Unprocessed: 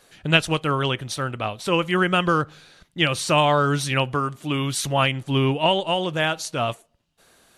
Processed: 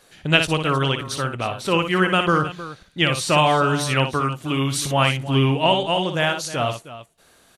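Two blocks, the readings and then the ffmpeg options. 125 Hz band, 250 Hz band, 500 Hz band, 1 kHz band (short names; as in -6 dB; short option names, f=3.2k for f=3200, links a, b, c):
+2.5 dB, +2.0 dB, +1.5 dB, +2.0 dB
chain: -af "aecho=1:1:59|313:0.422|0.188,volume=1dB"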